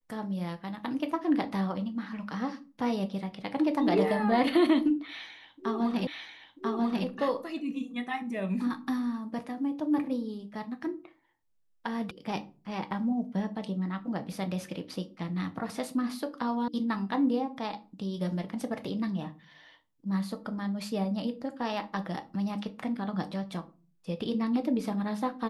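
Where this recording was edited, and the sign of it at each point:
0:06.07: the same again, the last 0.99 s
0:12.11: cut off before it has died away
0:16.68: cut off before it has died away

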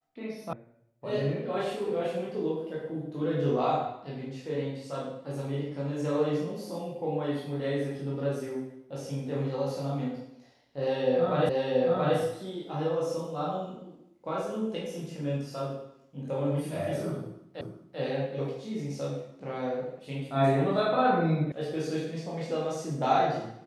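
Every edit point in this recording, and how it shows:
0:00.53: cut off before it has died away
0:11.49: the same again, the last 0.68 s
0:17.61: the same again, the last 0.39 s
0:21.52: cut off before it has died away

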